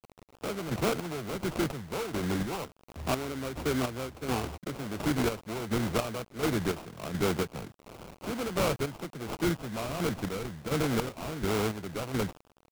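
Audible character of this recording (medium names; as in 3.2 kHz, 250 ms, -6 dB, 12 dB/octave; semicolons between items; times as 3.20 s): a quantiser's noise floor 8-bit, dither none; chopped level 1.4 Hz, depth 60%, duty 40%; aliases and images of a low sample rate 1.8 kHz, jitter 20%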